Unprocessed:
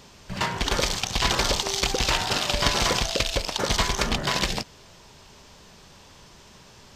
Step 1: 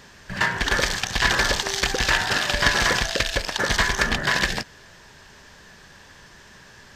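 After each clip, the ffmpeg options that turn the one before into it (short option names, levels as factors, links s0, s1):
-af "equalizer=f=1700:t=o:w=0.36:g=14.5"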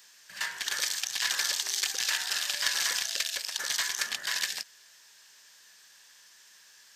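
-af "aderivative"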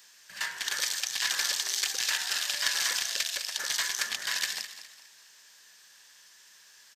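-filter_complex "[0:a]asplit=5[s0][s1][s2][s3][s4];[s1]adelay=206,afreqshift=33,volume=0.251[s5];[s2]adelay=412,afreqshift=66,volume=0.0902[s6];[s3]adelay=618,afreqshift=99,volume=0.0327[s7];[s4]adelay=824,afreqshift=132,volume=0.0117[s8];[s0][s5][s6][s7][s8]amix=inputs=5:normalize=0"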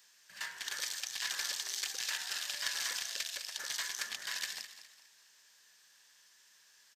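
-af "acrusher=bits=9:mode=log:mix=0:aa=0.000001,volume=0.398"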